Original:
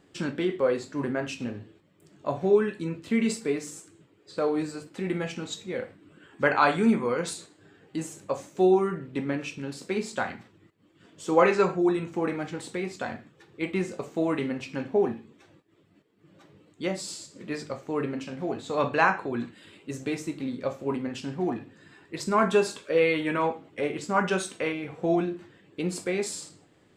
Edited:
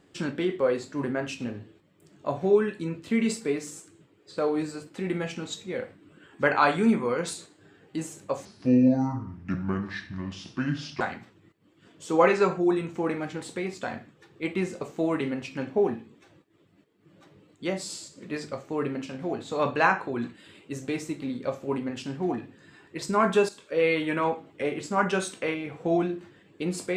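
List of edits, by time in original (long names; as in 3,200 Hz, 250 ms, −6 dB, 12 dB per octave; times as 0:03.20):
0:08.45–0:10.19: play speed 68%
0:22.67–0:23.08: fade in, from −12.5 dB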